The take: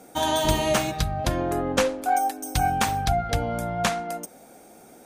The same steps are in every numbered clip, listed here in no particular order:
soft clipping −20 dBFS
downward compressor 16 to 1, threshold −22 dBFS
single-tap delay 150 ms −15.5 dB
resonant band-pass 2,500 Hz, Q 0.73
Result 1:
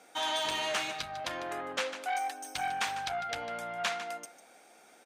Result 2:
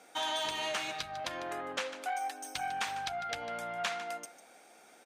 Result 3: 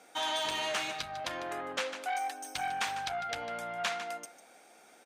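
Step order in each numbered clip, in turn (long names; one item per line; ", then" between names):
single-tap delay, then soft clipping, then resonant band-pass, then downward compressor
downward compressor, then single-tap delay, then soft clipping, then resonant band-pass
single-tap delay, then soft clipping, then downward compressor, then resonant band-pass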